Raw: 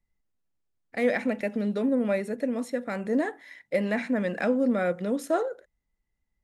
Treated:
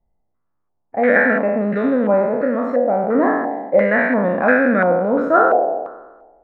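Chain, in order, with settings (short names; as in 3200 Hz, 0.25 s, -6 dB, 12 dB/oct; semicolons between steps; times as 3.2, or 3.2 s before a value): spectral trails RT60 1.30 s; stepped low-pass 2.9 Hz 730–1700 Hz; gain +5.5 dB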